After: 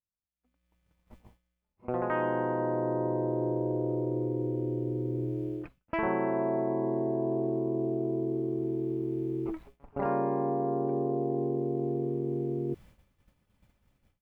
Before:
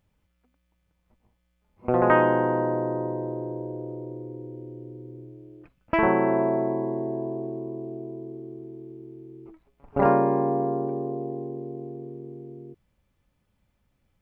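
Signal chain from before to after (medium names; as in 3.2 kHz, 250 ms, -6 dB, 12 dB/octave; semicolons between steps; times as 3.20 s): level rider gain up to 14 dB; expander -47 dBFS; reverse; compression 4:1, threshold -29 dBFS, peak gain reduction 17 dB; reverse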